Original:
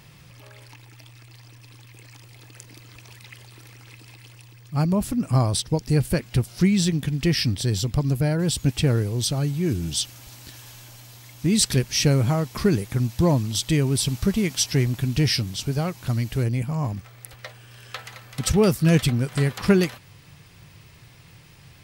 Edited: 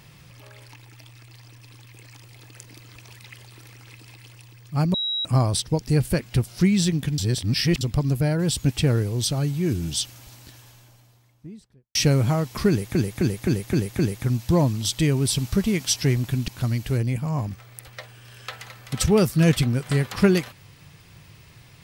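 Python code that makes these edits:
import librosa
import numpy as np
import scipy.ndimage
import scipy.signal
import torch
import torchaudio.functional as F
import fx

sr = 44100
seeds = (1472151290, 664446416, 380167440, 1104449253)

y = fx.studio_fade_out(x, sr, start_s=9.84, length_s=2.11)
y = fx.edit(y, sr, fx.bleep(start_s=4.94, length_s=0.31, hz=3860.0, db=-23.0),
    fx.reverse_span(start_s=7.18, length_s=0.63),
    fx.repeat(start_s=12.69, length_s=0.26, count=6),
    fx.cut(start_s=15.18, length_s=0.76), tone=tone)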